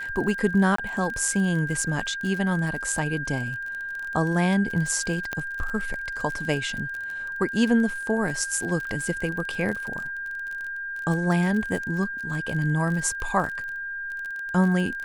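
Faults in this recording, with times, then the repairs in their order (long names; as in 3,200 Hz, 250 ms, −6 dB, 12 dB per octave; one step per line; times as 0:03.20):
surface crackle 35 per second −30 dBFS
whistle 1,600 Hz −30 dBFS
0:00.76–0:00.78: drop-out 24 ms
0:05.33: click −14 dBFS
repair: click removal
notch filter 1,600 Hz, Q 30
repair the gap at 0:00.76, 24 ms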